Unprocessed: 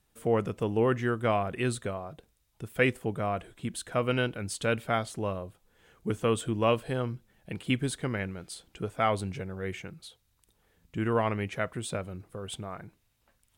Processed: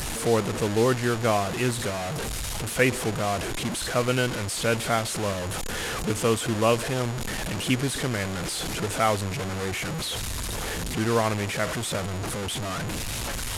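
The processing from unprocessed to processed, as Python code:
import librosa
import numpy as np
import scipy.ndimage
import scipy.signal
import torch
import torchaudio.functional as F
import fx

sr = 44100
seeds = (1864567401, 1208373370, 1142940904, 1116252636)

y = fx.delta_mod(x, sr, bps=64000, step_db=-27.5)
y = y + 10.0 ** (-54.0 / 20.0) * np.sin(2.0 * np.pi * 6900.0 * np.arange(len(y)) / sr)
y = y * librosa.db_to_amplitude(3.5)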